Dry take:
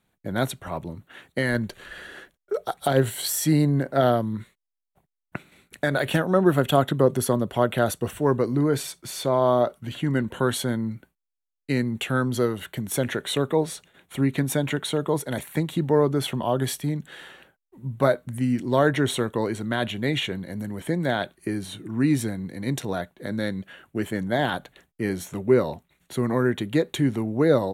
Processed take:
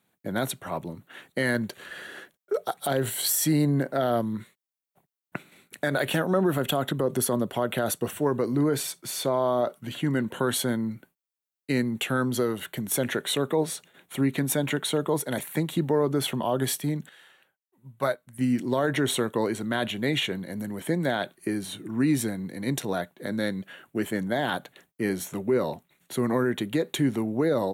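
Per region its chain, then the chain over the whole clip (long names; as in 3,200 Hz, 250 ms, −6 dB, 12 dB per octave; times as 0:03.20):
0:17.09–0:18.39: parametric band 260 Hz −8.5 dB 2.3 octaves + expander for the loud parts, over −40 dBFS
whole clip: high-pass filter 140 Hz 12 dB per octave; high-shelf EQ 12,000 Hz +8 dB; brickwall limiter −15 dBFS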